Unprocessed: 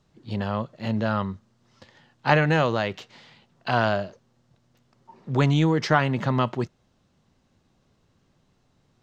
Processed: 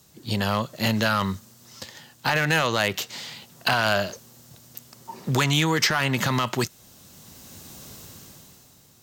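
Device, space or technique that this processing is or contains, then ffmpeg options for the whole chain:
FM broadcast chain: -filter_complex "[0:a]highpass=49,dynaudnorm=f=120:g=17:m=16.5dB,acrossover=split=1100|2800[a][b][c];[a]acompressor=threshold=-28dB:ratio=4[d];[b]acompressor=threshold=-25dB:ratio=4[e];[c]acompressor=threshold=-42dB:ratio=4[f];[d][e][f]amix=inputs=3:normalize=0,aemphasis=mode=production:type=50fm,alimiter=limit=-16.5dB:level=0:latency=1:release=20,asoftclip=type=hard:threshold=-19dB,lowpass=f=15k:w=0.5412,lowpass=f=15k:w=1.3066,aemphasis=mode=production:type=50fm,volume=6dB"

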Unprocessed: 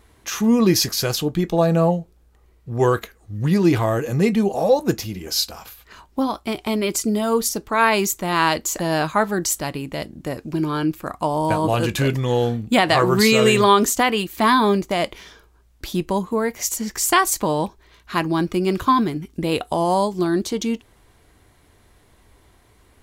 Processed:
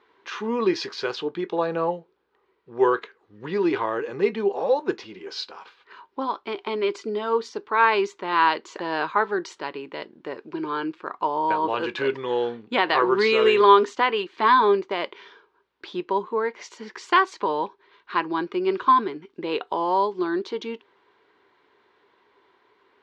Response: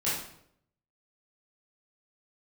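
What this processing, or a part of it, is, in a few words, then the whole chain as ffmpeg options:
phone earpiece: -af "highpass=390,equalizer=f=400:t=q:w=4:g=9,equalizer=f=670:t=q:w=4:g=-7,equalizer=f=970:t=q:w=4:g=7,equalizer=f=1.5k:t=q:w=4:g=4,lowpass=f=4k:w=0.5412,lowpass=f=4k:w=1.3066,volume=-4.5dB"

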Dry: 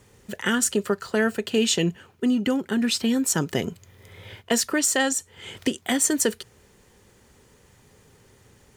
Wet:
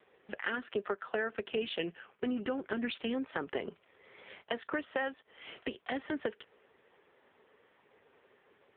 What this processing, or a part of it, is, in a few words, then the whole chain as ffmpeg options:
voicemail: -filter_complex "[0:a]asettb=1/sr,asplit=3[a][b][c];[a]atrim=end=1.784[d];[b]atrim=start=1.78:end=2.47,asetpts=PTS-STARTPTS,afade=t=in:d=0.004:c=qsin,afade=t=out:st=0.686:d=0.004:c=qsin,equalizer=f=2k:w=0.88:g=4[e];[c]atrim=start=2.466[f];[d][e]acrossfade=d=0.004:c1=hsin:c2=qsin[g];[g][f]acrossfade=d=0.004:c1=qsin:c2=hsin,highpass=420,lowpass=2.9k,acompressor=threshold=-29dB:ratio=6" -ar 8000 -c:a libopencore_amrnb -b:a 5150

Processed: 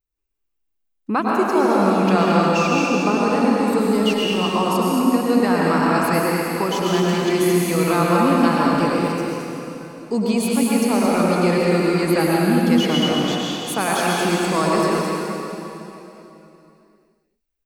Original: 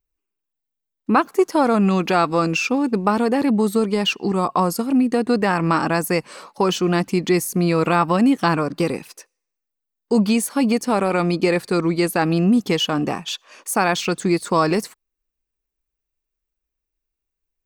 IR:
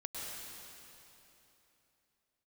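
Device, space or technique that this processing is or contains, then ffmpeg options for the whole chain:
cave: -filter_complex "[0:a]aecho=1:1:221:0.398[a];[1:a]atrim=start_sample=2205[b];[a][b]afir=irnorm=-1:irlink=0"

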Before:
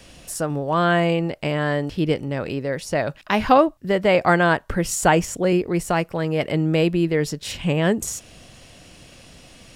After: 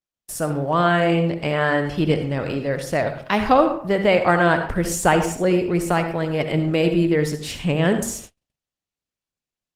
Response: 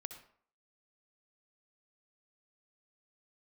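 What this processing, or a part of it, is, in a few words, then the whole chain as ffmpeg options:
speakerphone in a meeting room: -filter_complex "[0:a]asplit=3[a][b][c];[a]afade=t=out:st=1.52:d=0.02[d];[b]equalizer=f=1.3k:w=0.92:g=6,afade=t=in:st=1.52:d=0.02,afade=t=out:st=2.04:d=0.02[e];[c]afade=t=in:st=2.04:d=0.02[f];[d][e][f]amix=inputs=3:normalize=0[g];[1:a]atrim=start_sample=2205[h];[g][h]afir=irnorm=-1:irlink=0,dynaudnorm=f=140:g=3:m=5dB,agate=range=-50dB:threshold=-37dB:ratio=16:detection=peak" -ar 48000 -c:a libopus -b:a 20k

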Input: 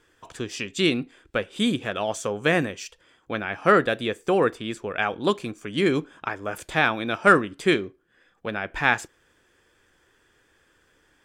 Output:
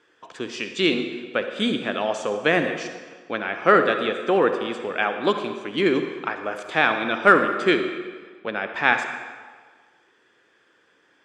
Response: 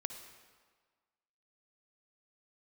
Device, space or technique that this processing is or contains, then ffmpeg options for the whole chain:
supermarket ceiling speaker: -filter_complex "[0:a]highpass=230,lowpass=5k[a];[1:a]atrim=start_sample=2205[b];[a][b]afir=irnorm=-1:irlink=0,volume=3.5dB"

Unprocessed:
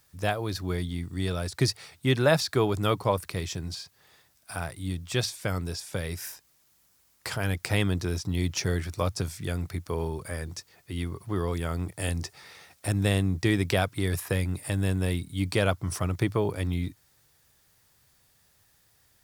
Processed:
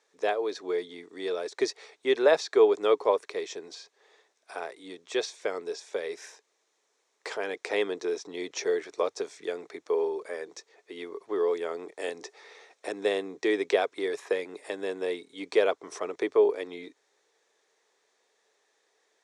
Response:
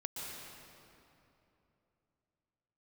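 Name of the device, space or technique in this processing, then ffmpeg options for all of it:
phone speaker on a table: -af "highpass=f=360:w=0.5412,highpass=f=360:w=1.3066,equalizer=f=430:t=q:w=4:g=10,equalizer=f=1.4k:t=q:w=4:g=-5,equalizer=f=2.9k:t=q:w=4:g=-6,equalizer=f=4.8k:t=q:w=4:g=-9,lowpass=f=6.4k:w=0.5412,lowpass=f=6.4k:w=1.3066"

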